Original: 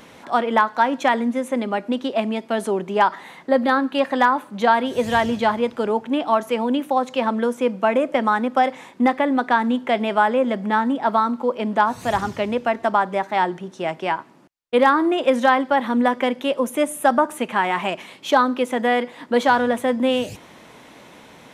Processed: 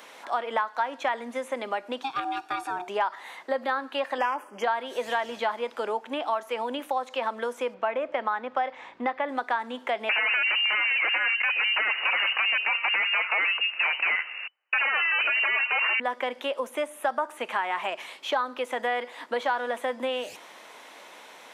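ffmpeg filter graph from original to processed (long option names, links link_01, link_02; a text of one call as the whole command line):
ffmpeg -i in.wav -filter_complex "[0:a]asettb=1/sr,asplit=3[link_01][link_02][link_03];[link_01]atrim=end=2.034[link_04];[link_02]atrim=start=2.03:end=2.88,asetpts=PTS-STARTPTS,afade=type=in:duration=0.004:curve=qsin,afade=type=out:start_time=0.846:duration=0.004:curve=qsin,aecho=1:1:1:0.73,atrim=end_sample=37485,aeval=exprs='val(0)*sin(2*PI*540*n/s)':channel_layout=same[link_05];[link_03]atrim=start=2.876[link_06];[link_04][link_05]acrossfade=duration=0.004:curve1=hsin:curve2=qsin[link_07];[link_07][link_06]acrossfade=duration=0.004:curve1=qsin:curve2=hsin,asettb=1/sr,asplit=3[link_08][link_09][link_10];[link_08]atrim=end=4.184[link_11];[link_09]atrim=start=4.18:end=4.64,asetpts=PTS-STARTPTS,afade=type=in:duration=0.004:curve=qsin,afade=type=out:start_time=0.456:duration=0.004:curve=qsin,equalizer=frequency=390:width_type=o:width=0.82:gain=7,aeval=exprs='clip(val(0),-1,0.168)':channel_layout=same,asuperstop=centerf=3900:order=8:qfactor=2.6[link_12];[link_10]atrim=start=4.636[link_13];[link_11][link_12]acrossfade=duration=0.004:curve1=hsin:curve2=qsin[link_14];[link_14][link_13]acrossfade=duration=0.004:curve1=qsin:curve2=hsin,asettb=1/sr,asplit=3[link_15][link_16][link_17];[link_15]atrim=end=7.744[link_18];[link_16]atrim=start=7.74:end=9.29,asetpts=PTS-STARTPTS,afade=type=in:duration=0.004:curve=qsin,afade=type=out:start_time=1.546:duration=0.004:curve=qsin,lowpass=3300,aeval=exprs='val(0)+0.00708*(sin(2*PI*60*n/s)+sin(2*PI*2*60*n/s)/2+sin(2*PI*3*60*n/s)/3+sin(2*PI*4*60*n/s)/4+sin(2*PI*5*60*n/s)/5)':channel_layout=same[link_19];[link_17]atrim=start=9.286[link_20];[link_18][link_19]acrossfade=duration=0.004:curve1=hsin:curve2=qsin[link_21];[link_21][link_20]acrossfade=duration=0.004:curve1=qsin:curve2=hsin,asettb=1/sr,asplit=3[link_22][link_23][link_24];[link_22]atrim=end=10.094[link_25];[link_23]atrim=start=10.09:end=16,asetpts=PTS-STARTPTS,afade=type=in:duration=0.004:curve=qsin,afade=type=out:start_time=5.906:duration=0.004:curve=qsin,acompressor=threshold=-19dB:ratio=12:attack=3.2:release=140:knee=1:detection=peak,aeval=exprs='0.299*sin(PI/2*5.01*val(0)/0.299)':channel_layout=same,lowpass=frequency=2600:width_type=q:width=0.5098,lowpass=frequency=2600:width_type=q:width=0.6013,lowpass=frequency=2600:width_type=q:width=0.9,lowpass=frequency=2600:width_type=q:width=2.563,afreqshift=-3000[link_26];[link_24]atrim=start=15.996[link_27];[link_25][link_26]acrossfade=duration=0.004:curve1=hsin:curve2=qsin[link_28];[link_28][link_27]acrossfade=duration=0.004:curve1=qsin:curve2=hsin,acrossover=split=3600[link_29][link_30];[link_30]acompressor=threshold=-44dB:ratio=4:attack=1:release=60[link_31];[link_29][link_31]amix=inputs=2:normalize=0,highpass=580,acompressor=threshold=-27dB:ratio=2.5" out.wav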